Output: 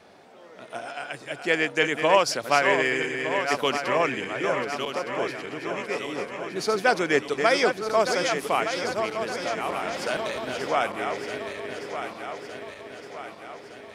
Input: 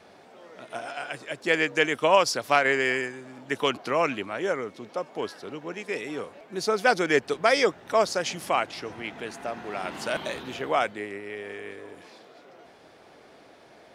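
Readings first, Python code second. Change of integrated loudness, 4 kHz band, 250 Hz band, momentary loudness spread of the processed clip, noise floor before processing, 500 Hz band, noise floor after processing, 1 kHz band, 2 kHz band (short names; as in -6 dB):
+1.0 dB, +1.5 dB, +1.5 dB, 16 LU, -53 dBFS, +1.5 dB, -46 dBFS, +1.5 dB, +1.5 dB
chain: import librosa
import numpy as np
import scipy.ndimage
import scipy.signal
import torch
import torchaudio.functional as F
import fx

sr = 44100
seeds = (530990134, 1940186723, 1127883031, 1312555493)

y = fx.reverse_delay_fb(x, sr, ms=607, feedback_pct=72, wet_db=-6.5)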